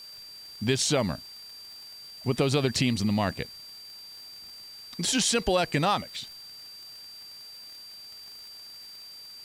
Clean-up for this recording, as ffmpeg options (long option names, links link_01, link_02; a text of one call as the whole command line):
ffmpeg -i in.wav -af "adeclick=threshold=4,bandreject=frequency=4700:width=30,afwtdn=0.002" out.wav